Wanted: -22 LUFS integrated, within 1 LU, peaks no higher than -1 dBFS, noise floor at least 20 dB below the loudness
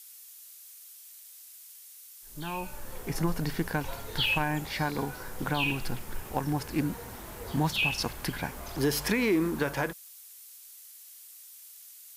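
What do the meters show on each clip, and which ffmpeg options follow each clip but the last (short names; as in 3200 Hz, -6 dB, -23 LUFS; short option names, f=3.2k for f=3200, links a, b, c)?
noise floor -50 dBFS; noise floor target -51 dBFS; loudness -31.0 LUFS; peak -15.5 dBFS; loudness target -22.0 LUFS
-> -af "afftdn=nr=6:nf=-50"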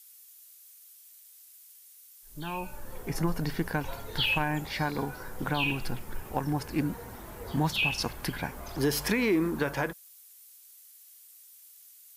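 noise floor -54 dBFS; loudness -31.0 LUFS; peak -15.5 dBFS; loudness target -22.0 LUFS
-> -af "volume=9dB"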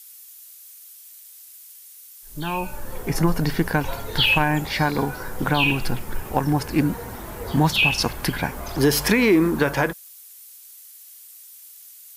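loudness -22.0 LUFS; peak -6.5 dBFS; noise floor -45 dBFS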